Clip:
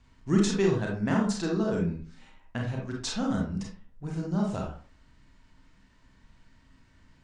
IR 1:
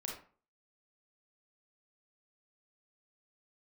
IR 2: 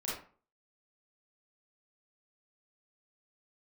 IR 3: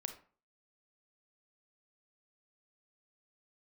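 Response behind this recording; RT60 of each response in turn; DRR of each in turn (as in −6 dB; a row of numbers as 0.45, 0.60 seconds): 1; 0.40, 0.40, 0.40 seconds; −1.5, −7.5, 7.0 decibels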